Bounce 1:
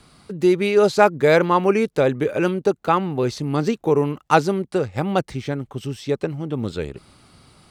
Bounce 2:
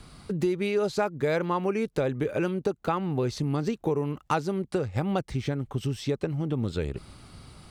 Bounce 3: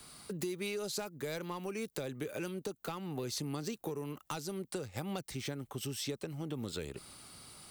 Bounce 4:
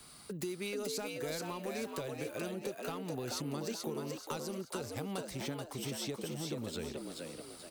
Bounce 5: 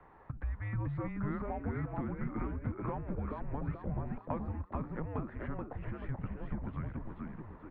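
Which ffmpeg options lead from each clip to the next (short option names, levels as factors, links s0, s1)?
-af "lowshelf=f=98:g=11,acompressor=threshold=0.0562:ratio=4"
-filter_complex "[0:a]aemphasis=mode=production:type=bsi,asoftclip=type=tanh:threshold=0.112,acrossover=split=270|3000[s0][s1][s2];[s1]acompressor=threshold=0.0178:ratio=6[s3];[s0][s3][s2]amix=inputs=3:normalize=0,volume=0.596"
-filter_complex "[0:a]asplit=6[s0][s1][s2][s3][s4][s5];[s1]adelay=432,afreqshift=81,volume=0.668[s6];[s2]adelay=864,afreqshift=162,volume=0.26[s7];[s3]adelay=1296,afreqshift=243,volume=0.101[s8];[s4]adelay=1728,afreqshift=324,volume=0.0398[s9];[s5]adelay=2160,afreqshift=405,volume=0.0155[s10];[s0][s6][s7][s8][s9][s10]amix=inputs=6:normalize=0,volume=0.841"
-af "highpass=f=270:t=q:w=0.5412,highpass=f=270:t=q:w=1.307,lowpass=f=2000:t=q:w=0.5176,lowpass=f=2000:t=q:w=0.7071,lowpass=f=2000:t=q:w=1.932,afreqshift=-300,volume=1.68"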